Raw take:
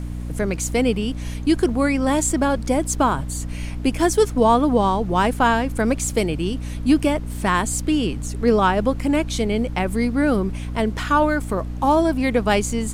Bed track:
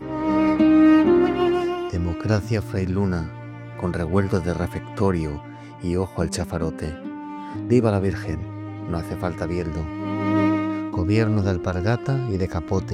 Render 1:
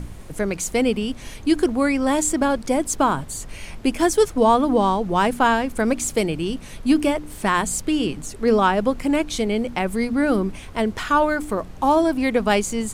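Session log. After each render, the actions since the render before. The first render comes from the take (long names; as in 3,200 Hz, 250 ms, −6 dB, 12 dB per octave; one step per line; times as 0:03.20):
hum removal 60 Hz, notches 5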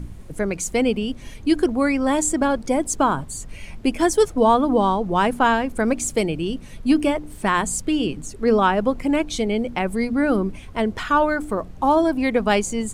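broadband denoise 7 dB, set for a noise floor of −38 dBFS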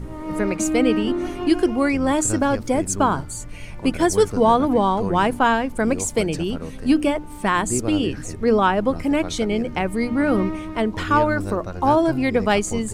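mix in bed track −8 dB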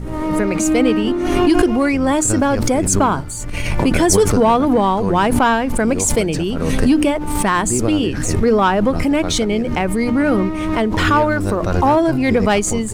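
leveller curve on the samples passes 1
background raised ahead of every attack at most 29 dB per second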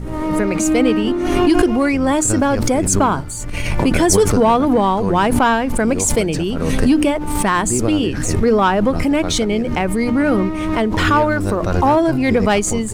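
no processing that can be heard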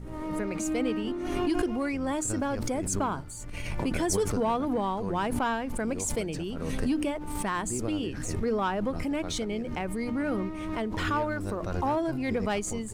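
level −14 dB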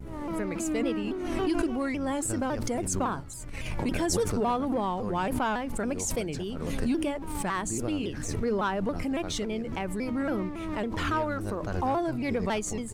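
pitch modulation by a square or saw wave saw down 3.6 Hz, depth 160 cents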